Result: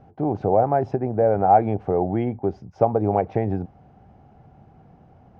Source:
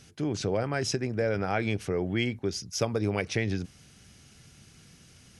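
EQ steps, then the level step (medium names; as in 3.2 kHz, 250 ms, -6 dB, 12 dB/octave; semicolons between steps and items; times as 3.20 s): resonant low-pass 780 Hz, resonance Q 5.9; +4.5 dB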